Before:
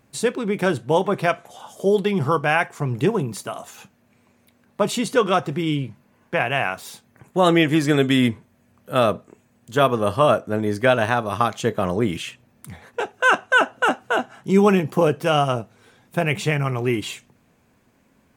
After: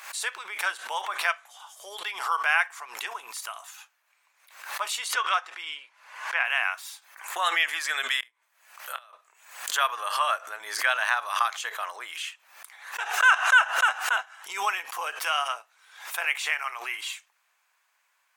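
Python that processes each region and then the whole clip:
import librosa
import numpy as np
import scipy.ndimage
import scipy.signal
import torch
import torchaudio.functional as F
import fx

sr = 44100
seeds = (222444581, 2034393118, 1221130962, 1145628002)

y = fx.chain(x, sr, fx.lowpass(hz=8900.0, slope=12),
    fx.bass_treble(bass_db=-5, treble_db=-3), at=(5.13, 6.45))
y = fx.chain(y, sr, fx.gate_flip(shuts_db=-12.0, range_db=-27),
    fx.doubler(ms=25.0, db=-11.5), at=(8.2, 9.13))
y = scipy.signal.sosfilt(scipy.signal.butter(4, 990.0, 'highpass', fs=sr, output='sos'), y)
y = fx.dynamic_eq(y, sr, hz=1800.0, q=2.4, threshold_db=-35.0, ratio=4.0, max_db=3)
y = fx.pre_swell(y, sr, db_per_s=92.0)
y = F.gain(torch.from_numpy(y), -2.5).numpy()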